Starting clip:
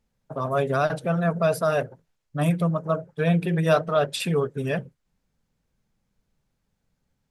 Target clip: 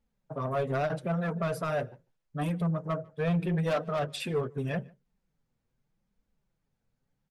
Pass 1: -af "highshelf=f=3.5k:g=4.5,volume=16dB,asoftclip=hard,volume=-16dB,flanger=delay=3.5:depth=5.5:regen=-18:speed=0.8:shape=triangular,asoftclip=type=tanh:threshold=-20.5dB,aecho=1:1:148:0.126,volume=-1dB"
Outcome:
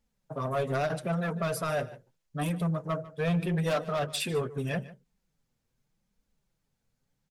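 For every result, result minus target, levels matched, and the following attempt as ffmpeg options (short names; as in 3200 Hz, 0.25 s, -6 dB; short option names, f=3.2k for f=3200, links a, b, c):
8000 Hz band +8.0 dB; echo-to-direct +9.5 dB
-af "highshelf=f=3.5k:g=-6,volume=16dB,asoftclip=hard,volume=-16dB,flanger=delay=3.5:depth=5.5:regen=-18:speed=0.8:shape=triangular,asoftclip=type=tanh:threshold=-20.5dB,aecho=1:1:148:0.126,volume=-1dB"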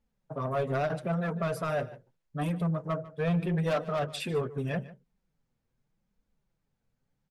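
echo-to-direct +9.5 dB
-af "highshelf=f=3.5k:g=-6,volume=16dB,asoftclip=hard,volume=-16dB,flanger=delay=3.5:depth=5.5:regen=-18:speed=0.8:shape=triangular,asoftclip=type=tanh:threshold=-20.5dB,aecho=1:1:148:0.0422,volume=-1dB"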